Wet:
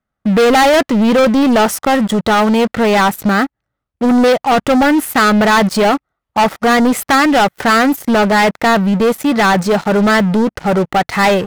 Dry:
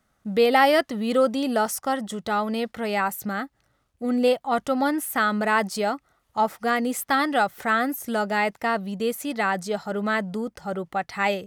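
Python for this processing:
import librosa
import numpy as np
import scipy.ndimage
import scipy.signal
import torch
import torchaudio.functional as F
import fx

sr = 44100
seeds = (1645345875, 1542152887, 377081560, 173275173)

y = fx.bass_treble(x, sr, bass_db=2, treble_db=-10)
y = fx.leveller(y, sr, passes=5)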